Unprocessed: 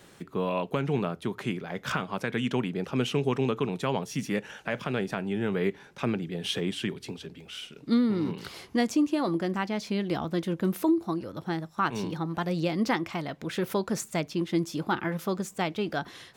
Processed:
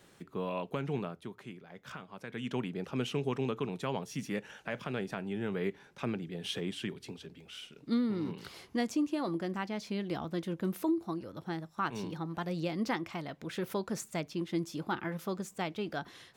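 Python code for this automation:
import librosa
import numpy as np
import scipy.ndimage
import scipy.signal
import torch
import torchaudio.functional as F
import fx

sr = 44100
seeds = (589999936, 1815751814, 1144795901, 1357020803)

y = fx.gain(x, sr, db=fx.line((0.96, -7.0), (1.47, -15.5), (2.15, -15.5), (2.57, -6.5)))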